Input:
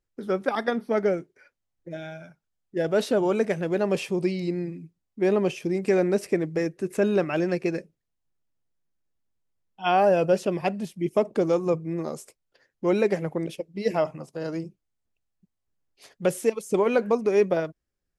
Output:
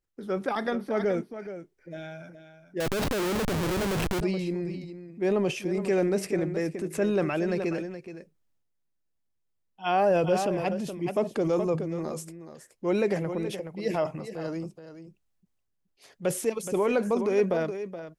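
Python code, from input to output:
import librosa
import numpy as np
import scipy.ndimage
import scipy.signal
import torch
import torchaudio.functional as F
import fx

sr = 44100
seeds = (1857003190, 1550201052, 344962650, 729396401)

y = x + 10.0 ** (-12.0 / 20.0) * np.pad(x, (int(423 * sr / 1000.0), 0))[:len(x)]
y = fx.schmitt(y, sr, flips_db=-29.5, at=(2.8, 4.21))
y = fx.transient(y, sr, attack_db=-2, sustain_db=6)
y = y * librosa.db_to_amplitude(-3.0)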